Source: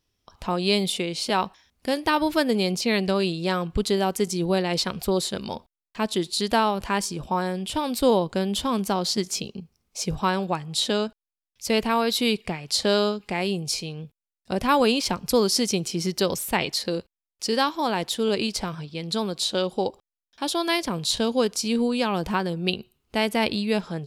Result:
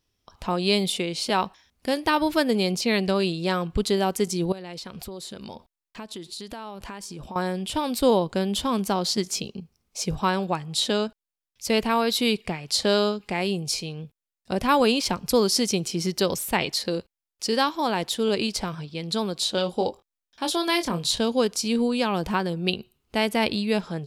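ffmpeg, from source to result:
ffmpeg -i in.wav -filter_complex "[0:a]asettb=1/sr,asplit=3[link_01][link_02][link_03];[link_01]atrim=end=4.524[link_04];[link_02]atrim=start=4.52:end=7.36,asetpts=PTS-STARTPTS,afade=type=in:duration=0.004:curve=qsin,afade=type=out:start_time=2.836:duration=0.004:curve=qsin,acompressor=threshold=-34dB:ratio=6:attack=3.2:release=140:knee=1:detection=peak[link_05];[link_03]atrim=start=7.356[link_06];[link_04][link_05]acrossfade=duration=0.004:curve1=hsin:curve2=qsin[link_07];[link_07][link_06]acrossfade=duration=0.004:curve1=qsin:curve2=hsin,asettb=1/sr,asplit=3[link_08][link_09][link_10];[link_08]atrim=end=19.554[link_11];[link_09]atrim=start=19.55:end=21.09,asetpts=PTS-STARTPTS,afade=type=in:duration=0.004:curve=qsin,afade=type=out:start_time=1.536:duration=0.004:curve=qsin,asplit=2[link_12][link_13];[link_13]adelay=23,volume=-7.5dB[link_14];[link_12][link_14]amix=inputs=2:normalize=0,atrim=end_sample=67914[link_15];[link_10]atrim=start=21.086[link_16];[link_11][link_15]acrossfade=duration=0.004:curve1=hsin:curve2=qsin[link_17];[link_17][link_16]acrossfade=duration=0.004:curve1=qsin:curve2=hsin" out.wav

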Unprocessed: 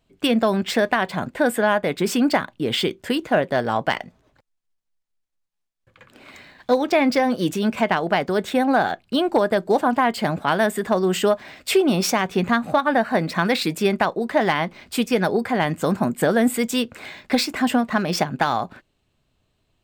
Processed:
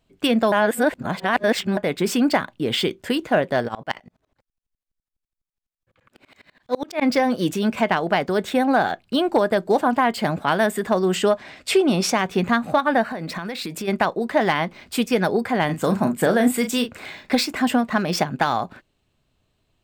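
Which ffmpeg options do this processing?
ffmpeg -i in.wav -filter_complex "[0:a]asplit=3[link_01][link_02][link_03];[link_01]afade=type=out:start_time=3.67:duration=0.02[link_04];[link_02]aeval=exprs='val(0)*pow(10,-28*if(lt(mod(-12*n/s,1),2*abs(-12)/1000),1-mod(-12*n/s,1)/(2*abs(-12)/1000),(mod(-12*n/s,1)-2*abs(-12)/1000)/(1-2*abs(-12)/1000))/20)':channel_layout=same,afade=type=in:start_time=3.67:duration=0.02,afade=type=out:start_time=7.01:duration=0.02[link_05];[link_03]afade=type=in:start_time=7.01:duration=0.02[link_06];[link_04][link_05][link_06]amix=inputs=3:normalize=0,asettb=1/sr,asplit=3[link_07][link_08][link_09];[link_07]atrim=end=11.154[link_10];[link_08]atrim=start=11.15:end=12.16,asetpts=PTS-STARTPTS,afade=type=in:duration=0.004:curve=qsin,afade=type=out:start_time=1.006:duration=0.004:curve=qsin,lowpass=11000[link_11];[link_09]atrim=start=12.156[link_12];[link_10][link_11]acrossfade=duration=0.004:curve1=hsin:curve2=qsin[link_13];[link_13][link_12]acrossfade=duration=0.004:curve1=qsin:curve2=hsin,asplit=3[link_14][link_15][link_16];[link_14]afade=type=out:start_time=13.09:duration=0.02[link_17];[link_15]acompressor=threshold=-25dB:ratio=16:attack=3.2:release=140:knee=1:detection=peak,afade=type=in:start_time=13.09:duration=0.02,afade=type=out:start_time=13.87:duration=0.02[link_18];[link_16]afade=type=in:start_time=13.87:duration=0.02[link_19];[link_17][link_18][link_19]amix=inputs=3:normalize=0,asettb=1/sr,asplit=3[link_20][link_21][link_22];[link_20]atrim=end=15.654[link_23];[link_21]atrim=start=15.65:end=17.32,asetpts=PTS-STARTPTS,afade=type=in:duration=0.004:curve=qsin,afade=type=out:start_time=1.666:duration=0.004:curve=qsin,asplit=2[link_24][link_25];[link_25]adelay=37,volume=-8dB[link_26];[link_24][link_26]amix=inputs=2:normalize=0,atrim=end_sample=73647[link_27];[link_22]atrim=start=17.316[link_28];[link_23][link_27]acrossfade=duration=0.004:curve1=hsin:curve2=qsin[link_29];[link_29][link_28]acrossfade=duration=0.004:curve1=qsin:curve2=hsin,asplit=3[link_30][link_31][link_32];[link_30]atrim=end=0.522[link_33];[link_31]atrim=start=0.518:end=1.772,asetpts=PTS-STARTPTS,areverse[link_34];[link_32]atrim=start=1.768[link_35];[link_33][link_34]acrossfade=duration=0.004:curve1=hsin:curve2=hsin[link_36];[link_36][link_35]acrossfade=duration=0.004:curve1=hsin:curve2=hsin" out.wav

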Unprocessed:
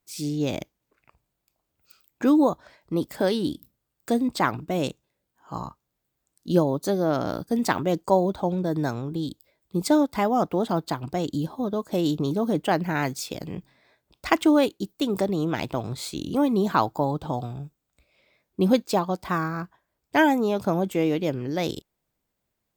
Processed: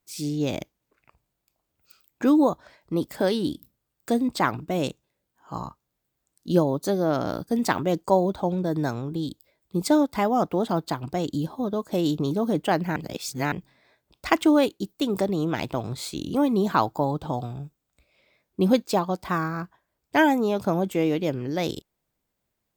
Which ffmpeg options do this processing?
ffmpeg -i in.wav -filter_complex "[0:a]asplit=3[link_01][link_02][link_03];[link_01]atrim=end=12.962[link_04];[link_02]atrim=start=12.958:end=13.522,asetpts=PTS-STARTPTS,areverse[link_05];[link_03]atrim=start=13.518[link_06];[link_04][link_05]acrossfade=duration=0.004:curve1=hsin:curve2=hsin[link_07];[link_07][link_06]acrossfade=duration=0.004:curve1=hsin:curve2=hsin" out.wav

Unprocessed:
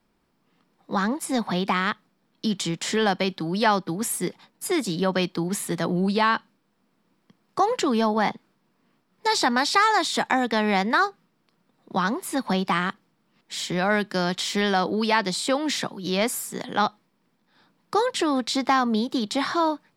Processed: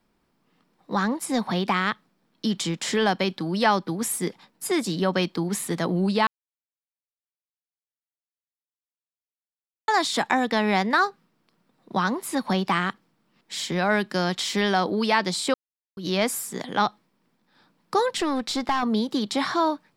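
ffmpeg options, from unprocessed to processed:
ffmpeg -i in.wav -filter_complex "[0:a]asettb=1/sr,asplit=3[link_01][link_02][link_03];[link_01]atrim=end=18.174[link_04];[link_02]atrim=start=18.17:end=18.83,asetpts=PTS-STARTPTS,afade=type=in:duration=0.004:curve=qsin,afade=type=out:start_time=0.656:duration=0.004:curve=qsin,aeval=exprs='(tanh(5.01*val(0)+0.45)-tanh(0.45))/5.01':channel_layout=same[link_05];[link_03]atrim=start=18.826[link_06];[link_04][link_05]acrossfade=duration=0.004:curve1=hsin:curve2=qsin[link_07];[link_07][link_06]acrossfade=duration=0.004:curve1=qsin:curve2=hsin,asplit=5[link_08][link_09][link_10][link_11][link_12];[link_08]atrim=end=6.27,asetpts=PTS-STARTPTS,afade=type=out:start_time=6.266:duration=0.004:curve=hsin[link_13];[link_09]atrim=start=6.27:end=9.88,asetpts=PTS-STARTPTS,volume=0[link_14];[link_10]atrim=start=9.88:end=15.54,asetpts=PTS-STARTPTS,afade=type=in:duration=0.004:curve=hsin,afade=type=out:start_time=5.656:duration=0.004:curve=hsin[link_15];[link_11]atrim=start=15.54:end=15.97,asetpts=PTS-STARTPTS,volume=0[link_16];[link_12]atrim=start=15.97,asetpts=PTS-STARTPTS,afade=type=in:duration=0.004:curve=hsin[link_17];[link_13][link_14][link_15][link_16][link_17]concat=n=5:v=0:a=1" out.wav

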